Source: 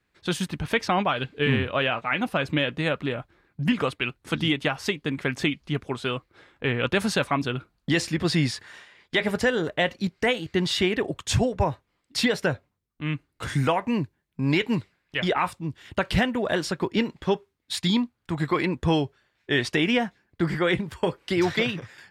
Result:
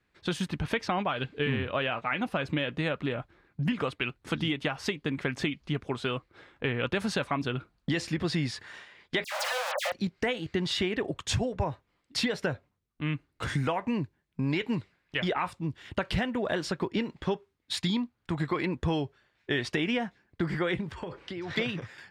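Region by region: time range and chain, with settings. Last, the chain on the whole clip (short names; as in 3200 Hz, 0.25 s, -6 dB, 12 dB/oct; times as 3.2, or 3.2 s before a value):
9.24–9.92 Schmitt trigger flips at -37 dBFS + brick-wall FIR high-pass 500 Hz + dispersion lows, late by 86 ms, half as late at 2100 Hz
20.91–21.56 compressor 4:1, threshold -37 dBFS + transient shaper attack +1 dB, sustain +9 dB + air absorption 65 m
whole clip: high shelf 8800 Hz -10.5 dB; compressor 3:1, threshold -27 dBFS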